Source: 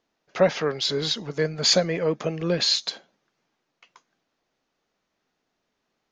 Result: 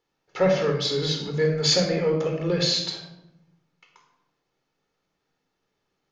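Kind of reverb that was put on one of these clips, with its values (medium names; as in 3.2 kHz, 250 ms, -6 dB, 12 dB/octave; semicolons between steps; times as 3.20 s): simulated room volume 2600 m³, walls furnished, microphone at 4.2 m; trim -4.5 dB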